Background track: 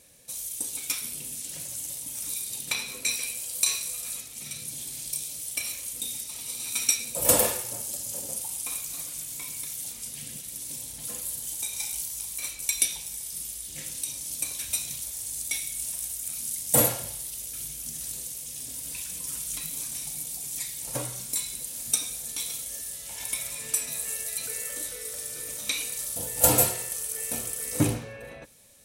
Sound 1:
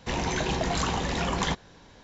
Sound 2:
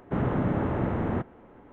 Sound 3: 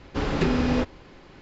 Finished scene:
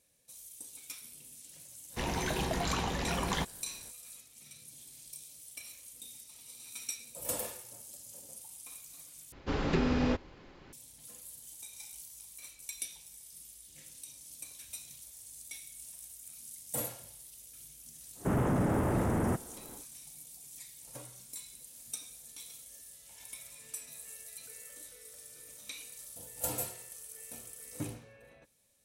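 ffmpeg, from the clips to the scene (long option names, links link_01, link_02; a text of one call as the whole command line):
ffmpeg -i bed.wav -i cue0.wav -i cue1.wav -i cue2.wav -filter_complex "[0:a]volume=-15.5dB[link_01];[2:a]asoftclip=type=tanh:threshold=-22.5dB[link_02];[link_01]asplit=2[link_03][link_04];[link_03]atrim=end=9.324[link_05];[3:a]atrim=end=1.41,asetpts=PTS-STARTPTS,volume=-6dB[link_06];[link_04]atrim=start=10.726[link_07];[1:a]atrim=end=2.03,asetpts=PTS-STARTPTS,volume=-5.5dB,afade=type=in:duration=0.05,afade=type=out:start_time=1.98:duration=0.05,adelay=1900[link_08];[link_02]atrim=end=1.72,asetpts=PTS-STARTPTS,afade=type=in:duration=0.1,afade=type=out:start_time=1.62:duration=0.1,adelay=18140[link_09];[link_05][link_06]acrossfade=duration=0.004:curve1=hsin:curve2=hsin[link_10];[link_10][link_07]acrossfade=duration=0.004:curve1=hsin:curve2=hsin[link_11];[link_11][link_08][link_09]amix=inputs=3:normalize=0" out.wav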